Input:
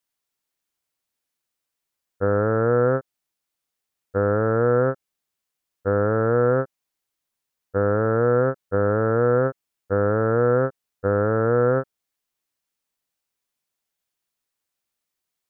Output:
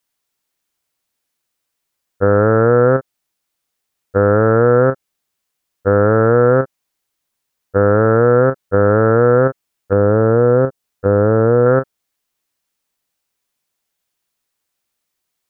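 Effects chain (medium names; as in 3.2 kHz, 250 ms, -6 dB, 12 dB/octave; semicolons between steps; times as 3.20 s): 9.92–11.66 s: dynamic bell 1.8 kHz, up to -7 dB, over -38 dBFS, Q 0.78; in parallel at +1.5 dB: level held to a coarse grid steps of 11 dB; on the sum: trim +2.5 dB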